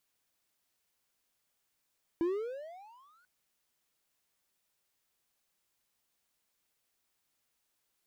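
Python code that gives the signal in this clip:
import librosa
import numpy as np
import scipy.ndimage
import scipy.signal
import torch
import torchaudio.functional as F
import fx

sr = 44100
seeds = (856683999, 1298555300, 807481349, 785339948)

y = fx.riser_tone(sr, length_s=1.04, level_db=-24, wave='triangle', hz=326.0, rise_st=26.5, swell_db=-39.5)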